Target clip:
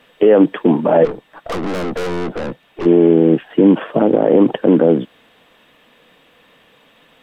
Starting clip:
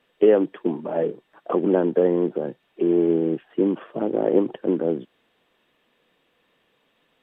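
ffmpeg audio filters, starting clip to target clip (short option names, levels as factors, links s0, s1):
-filter_complex "[0:a]equalizer=f=370:t=o:w=0.21:g=-8.5,asplit=3[s0][s1][s2];[s0]afade=t=out:st=1.04:d=0.02[s3];[s1]aeval=exprs='(tanh(63.1*val(0)+0.5)-tanh(0.5))/63.1':c=same,afade=t=in:st=1.04:d=0.02,afade=t=out:st=2.85:d=0.02[s4];[s2]afade=t=in:st=2.85:d=0.02[s5];[s3][s4][s5]amix=inputs=3:normalize=0,asettb=1/sr,asplit=3[s6][s7][s8];[s6]atrim=end=3.454[s9];[s7]atrim=start=3.45:end=3.9,asetpts=PTS-STARTPTS,afade=t=in:d=0.004:c=qsin,afade=t=out:st=0.446:d=0.004:c=qsin,bandreject=f=1200:w=8.3[s10];[s8]atrim=start=3.896[s11];[s9][s10]acrossfade=d=0.004:c1=hsin:c2=qsin[s12];[s12][s11]acrossfade=d=0.004:c1=qsin:c2=hsin,alimiter=level_in=6.68:limit=0.891:release=50:level=0:latency=1,volume=0.891"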